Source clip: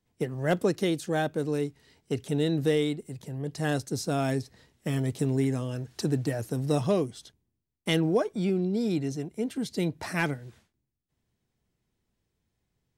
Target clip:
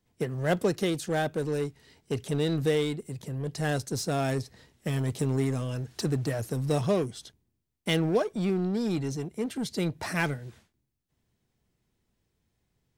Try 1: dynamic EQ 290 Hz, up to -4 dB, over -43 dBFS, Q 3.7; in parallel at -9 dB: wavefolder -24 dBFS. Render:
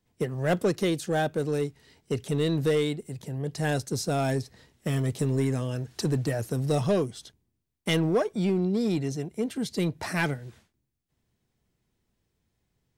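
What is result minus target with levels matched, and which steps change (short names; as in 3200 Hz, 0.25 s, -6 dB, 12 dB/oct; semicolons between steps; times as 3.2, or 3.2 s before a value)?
wavefolder: distortion -17 dB
change: wavefolder -32.5 dBFS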